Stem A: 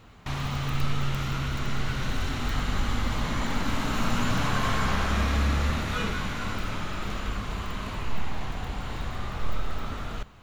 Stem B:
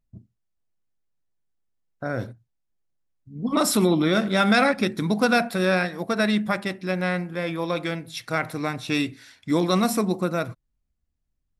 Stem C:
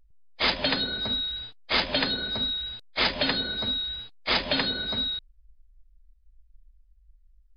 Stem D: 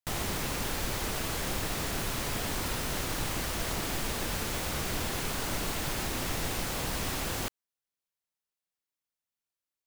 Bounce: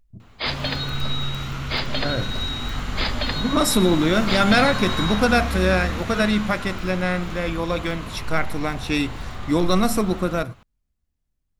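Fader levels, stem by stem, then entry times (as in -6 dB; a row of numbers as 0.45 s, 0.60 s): 0.0 dB, +1.5 dB, -2.0 dB, mute; 0.20 s, 0.00 s, 0.00 s, mute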